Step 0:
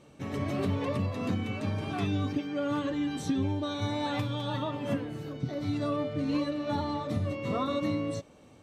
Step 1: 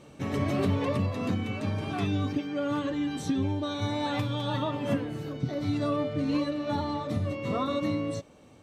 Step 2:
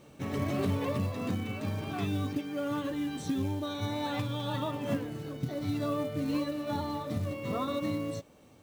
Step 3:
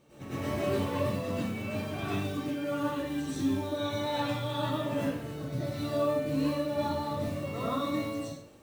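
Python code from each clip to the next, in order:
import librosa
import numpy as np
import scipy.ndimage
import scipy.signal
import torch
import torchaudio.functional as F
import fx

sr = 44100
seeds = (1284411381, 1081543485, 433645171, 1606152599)

y1 = fx.rider(x, sr, range_db=10, speed_s=2.0)
y1 = y1 * 10.0 ** (1.5 / 20.0)
y2 = fx.quant_companded(y1, sr, bits=6)
y2 = y2 * 10.0 ** (-3.5 / 20.0)
y3 = fx.rev_plate(y2, sr, seeds[0], rt60_s=0.53, hf_ratio=1.0, predelay_ms=85, drr_db=-10.0)
y3 = y3 * 10.0 ** (-8.0 / 20.0)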